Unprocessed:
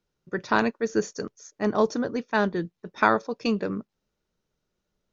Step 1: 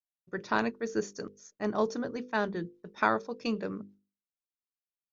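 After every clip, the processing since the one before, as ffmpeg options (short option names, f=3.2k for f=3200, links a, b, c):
-af "agate=range=-33dB:threshold=-46dB:ratio=3:detection=peak,bandreject=f=50:t=h:w=6,bandreject=f=100:t=h:w=6,bandreject=f=150:t=h:w=6,bandreject=f=200:t=h:w=6,bandreject=f=250:t=h:w=6,bandreject=f=300:t=h:w=6,bandreject=f=350:t=h:w=6,bandreject=f=400:t=h:w=6,bandreject=f=450:t=h:w=6,bandreject=f=500:t=h:w=6,volume=-6dB"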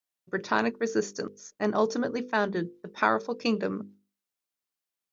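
-filter_complex "[0:a]asplit=2[a][b];[b]alimiter=limit=-22dB:level=0:latency=1:release=138,volume=1dB[c];[a][c]amix=inputs=2:normalize=0,lowshelf=f=98:g=-10"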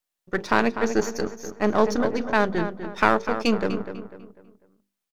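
-filter_complex "[0:a]aeval=exprs='if(lt(val(0),0),0.447*val(0),val(0))':c=same,asplit=2[a][b];[b]adelay=248,lowpass=f=2.9k:p=1,volume=-9.5dB,asplit=2[c][d];[d]adelay=248,lowpass=f=2.9k:p=1,volume=0.38,asplit=2[e][f];[f]adelay=248,lowpass=f=2.9k:p=1,volume=0.38,asplit=2[g][h];[h]adelay=248,lowpass=f=2.9k:p=1,volume=0.38[i];[c][e][g][i]amix=inputs=4:normalize=0[j];[a][j]amix=inputs=2:normalize=0,volume=6.5dB"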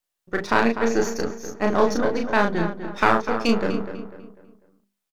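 -filter_complex "[0:a]asplit=2[a][b];[b]adelay=35,volume=-3.5dB[c];[a][c]amix=inputs=2:normalize=0"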